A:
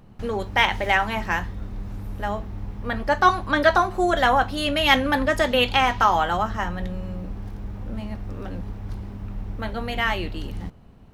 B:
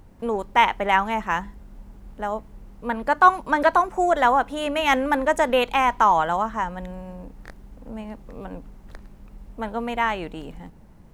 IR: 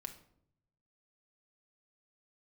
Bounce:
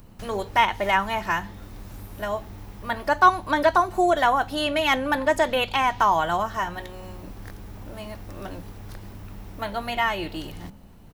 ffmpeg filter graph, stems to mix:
-filter_complex "[0:a]aemphasis=mode=production:type=75kf,bandreject=f=66.93:t=h:w=4,bandreject=f=133.86:t=h:w=4,bandreject=f=200.79:t=h:w=4,bandreject=f=267.72:t=h:w=4,bandreject=f=334.65:t=h:w=4,bandreject=f=401.58:t=h:w=4,bandreject=f=468.51:t=h:w=4,bandreject=f=535.44:t=h:w=4,bandreject=f=602.37:t=h:w=4,bandreject=f=669.3:t=h:w=4,bandreject=f=736.23:t=h:w=4,bandreject=f=803.16:t=h:w=4,bandreject=f=870.09:t=h:w=4,bandreject=f=937.02:t=h:w=4,acrossover=split=230|4600[a][b][c];[a]acompressor=threshold=-34dB:ratio=4[d];[b]acompressor=threshold=-25dB:ratio=4[e];[c]acompressor=threshold=-48dB:ratio=4[f];[d][e][f]amix=inputs=3:normalize=0,volume=-2dB[g];[1:a]volume=-1,adelay=1.1,volume=-2.5dB[h];[g][h]amix=inputs=2:normalize=0"

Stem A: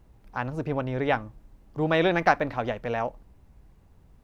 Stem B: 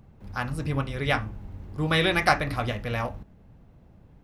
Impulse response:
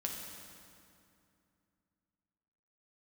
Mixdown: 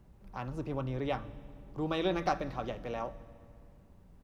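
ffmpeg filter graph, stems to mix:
-filter_complex "[0:a]acrossover=split=310|3000[a][b][c];[b]acompressor=threshold=-46dB:ratio=2[d];[a][d][c]amix=inputs=3:normalize=0,volume=-5.5dB,asplit=2[e][f];[f]volume=-11dB[g];[1:a]lowpass=f=1.5k:w=0.5412,lowpass=f=1.5k:w=1.3066,aecho=1:1:5.2:0.59,volume=-14dB,asplit=2[h][i];[i]volume=-18.5dB[j];[2:a]atrim=start_sample=2205[k];[g][j]amix=inputs=2:normalize=0[l];[l][k]afir=irnorm=-1:irlink=0[m];[e][h][m]amix=inputs=3:normalize=0"

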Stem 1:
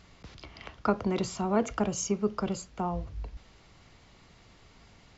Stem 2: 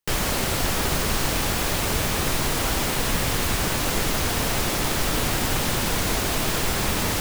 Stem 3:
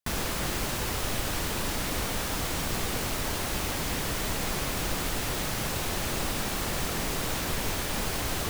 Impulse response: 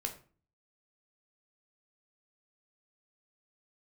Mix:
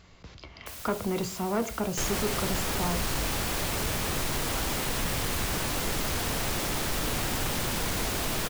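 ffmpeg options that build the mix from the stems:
-filter_complex "[0:a]volume=-2.5dB,asplit=2[a][b];[b]volume=-5.5dB[c];[1:a]adelay=1900,volume=-5dB[d];[2:a]aeval=exprs='(mod(42.2*val(0)+1,2)-1)/42.2':c=same,adelay=600,volume=-5.5dB[e];[3:a]atrim=start_sample=2205[f];[c][f]afir=irnorm=-1:irlink=0[g];[a][d][e][g]amix=inputs=4:normalize=0,asoftclip=type=tanh:threshold=-20.5dB"

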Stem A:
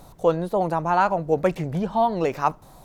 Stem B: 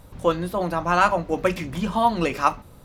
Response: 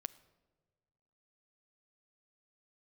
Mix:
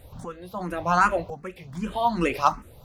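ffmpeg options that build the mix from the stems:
-filter_complex "[0:a]aeval=exprs='val(0)*pow(10,-28*if(lt(mod(0.77*n/s,1),2*abs(0.77)/1000),1-mod(0.77*n/s,1)/(2*abs(0.77)/1000),(mod(0.77*n/s,1)-2*abs(0.77)/1000)/(1-2*abs(0.77)/1000))/20)':c=same,volume=-11dB,asplit=2[a][b];[1:a]volume=1.5dB[c];[b]apad=whole_len=125249[d];[c][d]sidechaincompress=threshold=-44dB:ratio=12:attack=6.4:release=438[e];[a][e]amix=inputs=2:normalize=0,asoftclip=type=hard:threshold=-5.5dB,asplit=2[f][g];[g]afreqshift=2.6[h];[f][h]amix=inputs=2:normalize=1"

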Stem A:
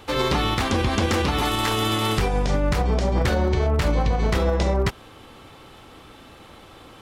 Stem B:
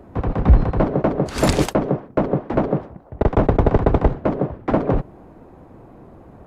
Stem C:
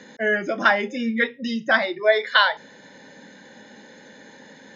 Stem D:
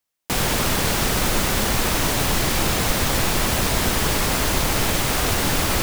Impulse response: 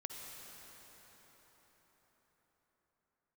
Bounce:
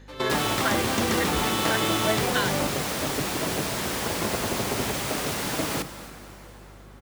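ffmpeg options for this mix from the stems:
-filter_complex "[0:a]volume=-5.5dB,asplit=2[a][b];[b]volume=-8dB[c];[1:a]asplit=2[d][e];[e]adelay=4.8,afreqshift=0.47[f];[d][f]amix=inputs=2:normalize=1,adelay=850,volume=-10.5dB[g];[2:a]volume=-11dB,asplit=2[h][i];[3:a]equalizer=f=14k:w=4.1:g=-5,volume=-10.5dB,asplit=3[j][k][l];[k]volume=-3.5dB[m];[l]volume=-15dB[n];[i]apad=whole_len=309252[o];[a][o]sidechaingate=range=-33dB:threshold=-49dB:ratio=16:detection=peak[p];[4:a]atrim=start_sample=2205[q];[c][m]amix=inputs=2:normalize=0[r];[r][q]afir=irnorm=-1:irlink=0[s];[n]aecho=0:1:278:1[t];[p][g][h][j][s][t]amix=inputs=6:normalize=0,highpass=130,aeval=exprs='val(0)+0.00447*(sin(2*PI*50*n/s)+sin(2*PI*2*50*n/s)/2+sin(2*PI*3*50*n/s)/3+sin(2*PI*4*50*n/s)/4+sin(2*PI*5*50*n/s)/5)':c=same"

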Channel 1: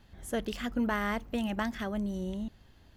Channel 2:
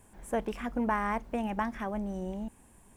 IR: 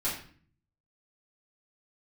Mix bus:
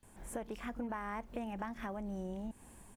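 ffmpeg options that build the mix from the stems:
-filter_complex "[0:a]highshelf=f=4.7k:g=10.5,acrossover=split=190[a][b];[b]acompressor=threshold=-38dB:ratio=6[c];[a][c]amix=inputs=2:normalize=0,volume=-18.5dB[d];[1:a]acompressor=threshold=-42dB:ratio=5,adelay=29,volume=-1dB,asplit=2[e][f];[f]apad=whole_len=130607[g];[d][g]sidechaincompress=threshold=-48dB:ratio=8:attack=16:release=245[h];[h][e]amix=inputs=2:normalize=0,dynaudnorm=f=130:g=5:m=4dB"

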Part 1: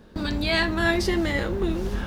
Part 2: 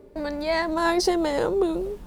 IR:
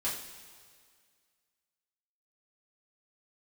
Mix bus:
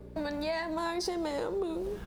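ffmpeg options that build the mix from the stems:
-filter_complex "[0:a]volume=-16dB[a];[1:a]aeval=exprs='val(0)+0.00891*(sin(2*PI*60*n/s)+sin(2*PI*2*60*n/s)/2+sin(2*PI*3*60*n/s)/3+sin(2*PI*4*60*n/s)/4+sin(2*PI*5*60*n/s)/5)':c=same,adelay=4.7,volume=-2dB,asplit=2[b][c];[c]volume=-19dB[d];[2:a]atrim=start_sample=2205[e];[d][e]afir=irnorm=-1:irlink=0[f];[a][b][f]amix=inputs=3:normalize=0,lowshelf=f=160:g=-5.5,acompressor=threshold=-30dB:ratio=6"

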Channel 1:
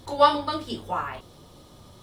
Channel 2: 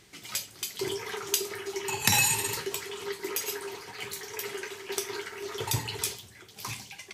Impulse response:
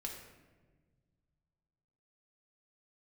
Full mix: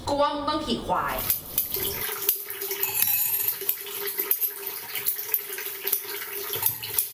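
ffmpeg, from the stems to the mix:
-filter_complex "[0:a]acontrast=36,volume=2dB,asplit=2[a][b];[b]volume=-7.5dB[c];[1:a]aexciter=amount=5.5:drive=9.3:freq=11k,tiltshelf=f=1.3k:g=-4,adelay=950,volume=2.5dB[d];[2:a]atrim=start_sample=2205[e];[c][e]afir=irnorm=-1:irlink=0[f];[a][d][f]amix=inputs=3:normalize=0,acompressor=threshold=-22dB:ratio=5"

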